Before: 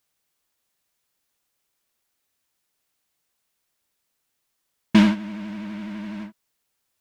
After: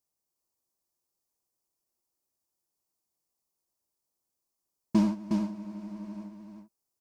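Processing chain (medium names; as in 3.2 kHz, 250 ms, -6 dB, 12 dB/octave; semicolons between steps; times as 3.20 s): high-order bell 2.3 kHz -13.5 dB; small resonant body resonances 350/2500 Hz, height 7 dB, ringing for 85 ms; on a send: delay 362 ms -5 dB; on the sum: trim -9 dB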